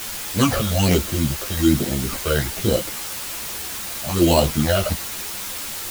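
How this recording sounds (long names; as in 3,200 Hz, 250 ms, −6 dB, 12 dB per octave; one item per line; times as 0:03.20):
aliases and images of a low sample rate 3,500 Hz, jitter 0%
phaser sweep stages 8, 1.2 Hz, lowest notch 250–2,000 Hz
a quantiser's noise floor 6 bits, dither triangular
a shimmering, thickened sound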